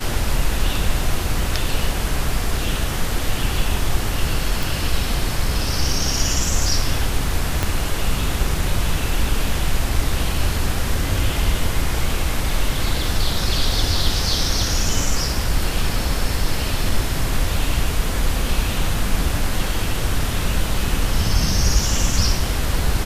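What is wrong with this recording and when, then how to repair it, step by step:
4.63 pop
7.63 pop -5 dBFS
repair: de-click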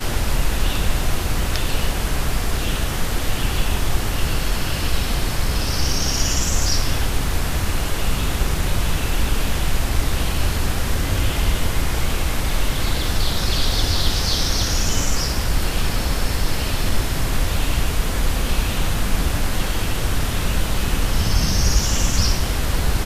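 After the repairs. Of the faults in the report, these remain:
7.63 pop

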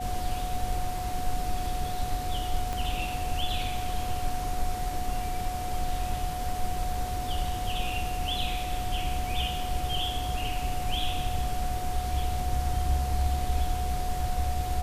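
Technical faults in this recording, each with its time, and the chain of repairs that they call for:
tone 730 Hz -33 dBFS
2.73 pop -18 dBFS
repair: de-click; notch 730 Hz, Q 30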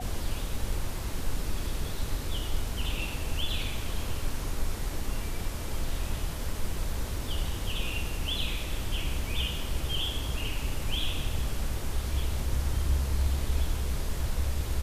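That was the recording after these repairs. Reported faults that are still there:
2.73 pop

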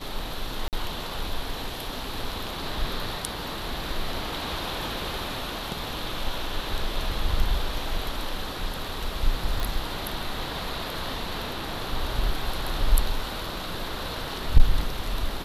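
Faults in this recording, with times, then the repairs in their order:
0.68–0.73 gap 48 ms
9.6 pop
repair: de-click; interpolate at 0.68, 48 ms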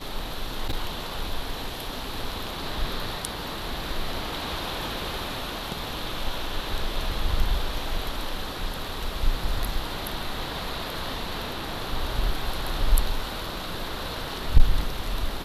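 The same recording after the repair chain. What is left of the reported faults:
none

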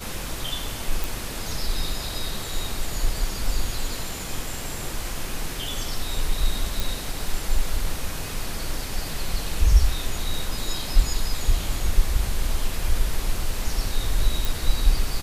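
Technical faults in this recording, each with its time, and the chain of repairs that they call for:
1.04 pop
6.8 pop
14.45 pop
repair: de-click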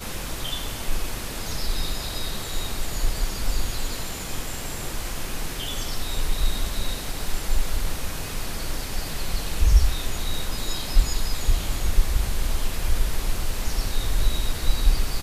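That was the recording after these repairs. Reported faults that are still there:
none

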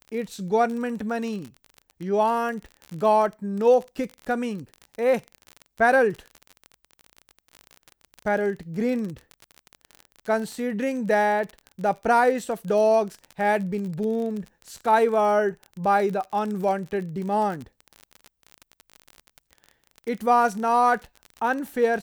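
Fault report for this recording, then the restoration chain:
crackle 39/s -30 dBFS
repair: de-click

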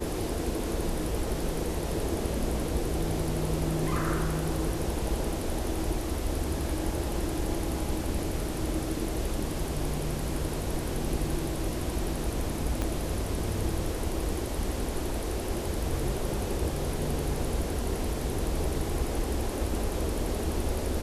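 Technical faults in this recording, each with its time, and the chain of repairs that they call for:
12.82 pop -16 dBFS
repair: de-click

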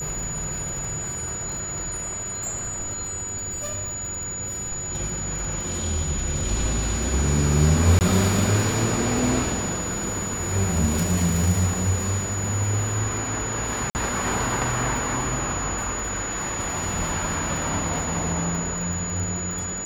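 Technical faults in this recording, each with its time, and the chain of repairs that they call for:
crackle 26/s -29 dBFS
tone 6900 Hz -29 dBFS
7.99–8.01 gap 19 ms
13.9–13.95 gap 49 ms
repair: de-click; notch 6900 Hz, Q 30; interpolate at 7.99, 19 ms; interpolate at 13.9, 49 ms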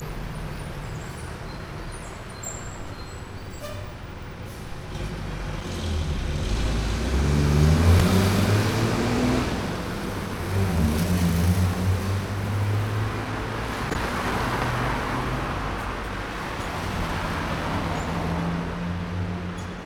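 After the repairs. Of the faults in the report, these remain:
none

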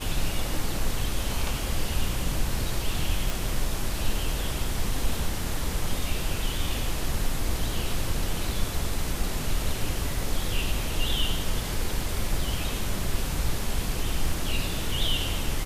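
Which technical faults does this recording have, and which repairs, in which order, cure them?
3.3 pop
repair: de-click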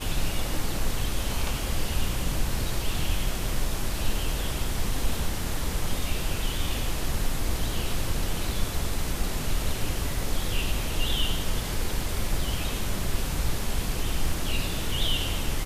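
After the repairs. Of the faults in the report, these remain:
none

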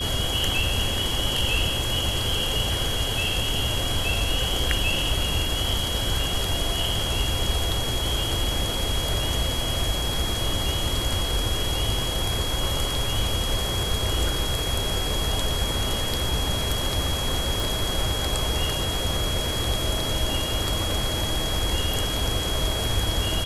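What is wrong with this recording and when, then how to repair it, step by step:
tone 3300 Hz -29 dBFS
17.6 pop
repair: de-click; notch 3300 Hz, Q 30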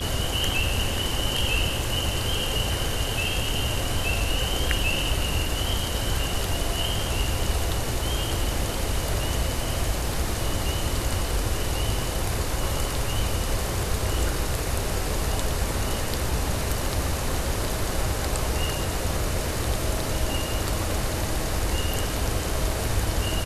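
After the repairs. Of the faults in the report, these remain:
none

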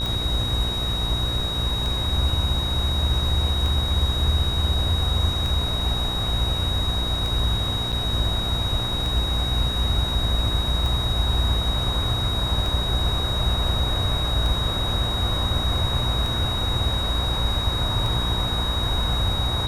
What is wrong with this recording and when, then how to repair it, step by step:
buzz 60 Hz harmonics 25 -28 dBFS
tick 33 1/3 rpm
tone 3800 Hz -26 dBFS
7.92–7.93 gap 6.9 ms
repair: de-click; de-hum 60 Hz, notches 25; notch 3800 Hz, Q 30; interpolate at 7.92, 6.9 ms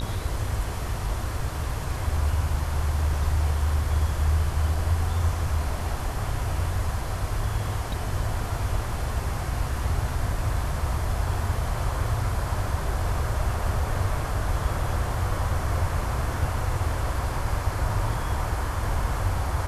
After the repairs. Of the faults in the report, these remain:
none

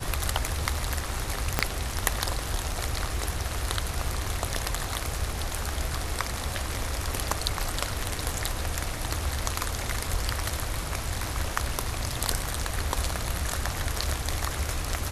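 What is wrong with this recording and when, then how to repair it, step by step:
1.59 pop -5 dBFS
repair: de-click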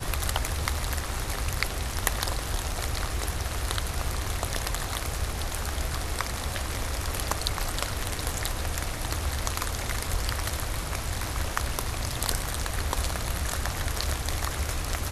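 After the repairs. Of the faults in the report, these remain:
1.59 pop

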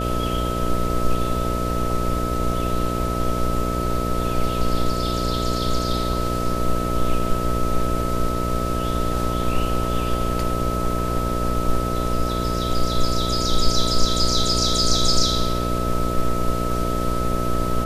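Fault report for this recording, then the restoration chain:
buzz 60 Hz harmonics 11 -25 dBFS
tone 1300 Hz -27 dBFS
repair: notch 1300 Hz, Q 30; de-hum 60 Hz, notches 11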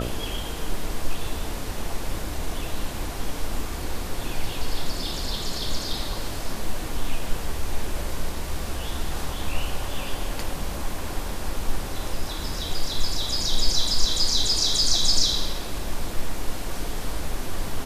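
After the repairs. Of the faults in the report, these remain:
none

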